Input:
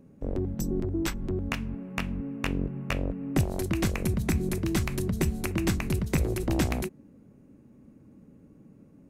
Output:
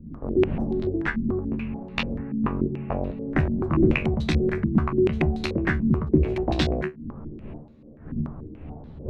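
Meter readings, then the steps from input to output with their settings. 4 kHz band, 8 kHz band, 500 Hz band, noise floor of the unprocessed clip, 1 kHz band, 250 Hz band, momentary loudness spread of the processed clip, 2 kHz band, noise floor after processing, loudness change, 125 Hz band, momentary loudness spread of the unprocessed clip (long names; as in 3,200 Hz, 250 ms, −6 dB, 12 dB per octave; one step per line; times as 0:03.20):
+3.0 dB, below −10 dB, +8.0 dB, −55 dBFS, +5.5 dB, +6.0 dB, 17 LU, +5.0 dB, −45 dBFS, +5.0 dB, +3.5 dB, 6 LU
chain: wind on the microphone 180 Hz −39 dBFS
tuned comb filter 75 Hz, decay 0.16 s, harmonics all, mix 90%
low-pass on a step sequencer 6.9 Hz 230–3,900 Hz
level +7 dB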